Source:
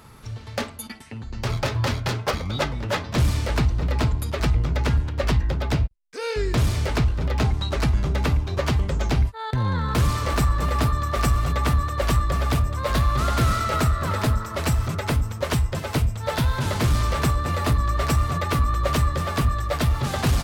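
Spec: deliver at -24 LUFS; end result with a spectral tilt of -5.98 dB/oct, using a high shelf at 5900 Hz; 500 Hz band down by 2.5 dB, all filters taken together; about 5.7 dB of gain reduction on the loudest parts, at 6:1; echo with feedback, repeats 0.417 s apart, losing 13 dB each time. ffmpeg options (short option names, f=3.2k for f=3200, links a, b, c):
-af "equalizer=f=500:t=o:g=-3,highshelf=f=5.9k:g=-7,acompressor=threshold=-22dB:ratio=6,aecho=1:1:417|834|1251:0.224|0.0493|0.0108,volume=3.5dB"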